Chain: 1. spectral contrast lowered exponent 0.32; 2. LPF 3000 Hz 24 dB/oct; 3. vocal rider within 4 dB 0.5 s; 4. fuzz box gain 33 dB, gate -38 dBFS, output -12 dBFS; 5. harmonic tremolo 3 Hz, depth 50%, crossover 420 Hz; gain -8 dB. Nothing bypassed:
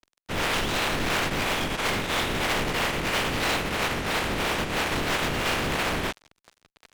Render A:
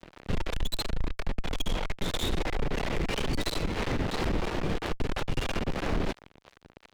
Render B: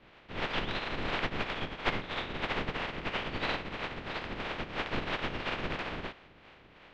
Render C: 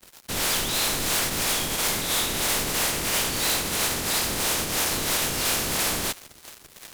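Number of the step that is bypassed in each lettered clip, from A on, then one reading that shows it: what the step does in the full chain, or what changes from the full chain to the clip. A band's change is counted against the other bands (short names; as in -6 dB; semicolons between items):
1, 125 Hz band +8.5 dB; 4, distortion -3 dB; 2, 8 kHz band +14.5 dB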